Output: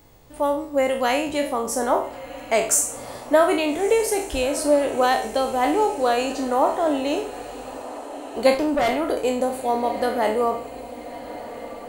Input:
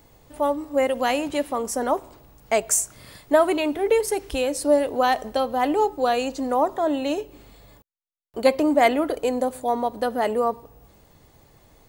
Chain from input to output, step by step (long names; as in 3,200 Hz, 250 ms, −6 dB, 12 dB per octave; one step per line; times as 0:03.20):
peak hold with a decay on every bin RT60 0.44 s
feedback delay with all-pass diffusion 1,325 ms, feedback 58%, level −15 dB
0:08.54–0:09.08: tube saturation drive 16 dB, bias 0.45